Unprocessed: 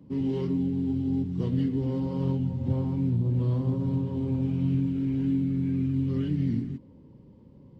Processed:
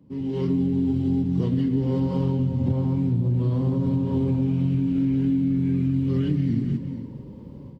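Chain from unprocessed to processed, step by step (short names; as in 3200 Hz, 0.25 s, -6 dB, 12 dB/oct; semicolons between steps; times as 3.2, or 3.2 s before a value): AGC gain up to 15.5 dB; on a send: tapped delay 0.174/0.453 s -12.5/-19 dB; on the sum: compressor, threshold -16 dBFS, peak gain reduction 9 dB; gain -3.5 dB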